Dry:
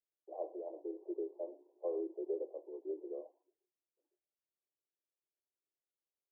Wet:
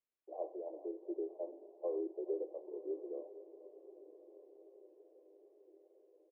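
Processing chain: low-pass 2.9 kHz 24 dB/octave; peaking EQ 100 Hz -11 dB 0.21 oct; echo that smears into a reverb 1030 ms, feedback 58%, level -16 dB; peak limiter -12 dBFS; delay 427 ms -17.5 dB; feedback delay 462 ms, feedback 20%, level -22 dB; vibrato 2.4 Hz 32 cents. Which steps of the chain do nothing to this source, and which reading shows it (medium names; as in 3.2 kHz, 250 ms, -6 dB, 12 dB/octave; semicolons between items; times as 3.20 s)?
low-pass 2.9 kHz: input has nothing above 810 Hz; peaking EQ 100 Hz: input has nothing below 270 Hz; peak limiter -12 dBFS: peak at its input -26.5 dBFS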